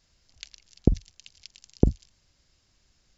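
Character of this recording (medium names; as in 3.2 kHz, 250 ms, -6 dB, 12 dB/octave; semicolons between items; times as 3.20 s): noise floor -69 dBFS; spectral tilt -10.5 dB/octave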